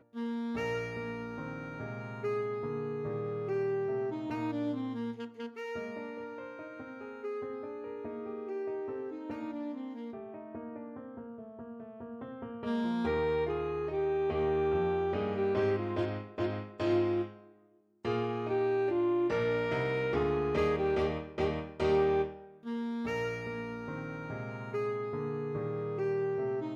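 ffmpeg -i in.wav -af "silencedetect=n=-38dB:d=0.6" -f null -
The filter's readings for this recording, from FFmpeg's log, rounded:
silence_start: 17.28
silence_end: 18.05 | silence_duration: 0.77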